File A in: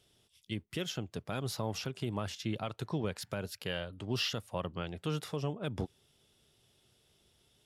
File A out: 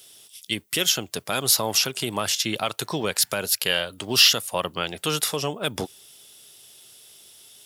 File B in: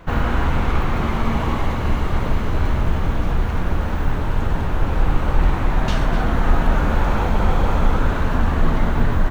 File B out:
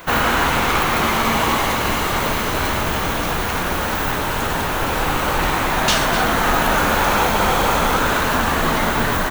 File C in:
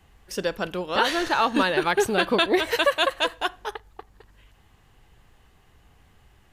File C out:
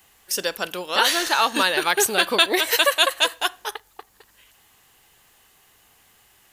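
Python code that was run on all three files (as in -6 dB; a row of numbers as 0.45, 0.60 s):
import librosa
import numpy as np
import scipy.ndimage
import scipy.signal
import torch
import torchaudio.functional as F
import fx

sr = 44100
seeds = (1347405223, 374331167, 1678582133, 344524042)

y = fx.riaa(x, sr, side='recording')
y = librosa.util.normalize(y) * 10.0 ** (-3 / 20.0)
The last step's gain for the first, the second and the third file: +12.5, +8.0, +1.5 dB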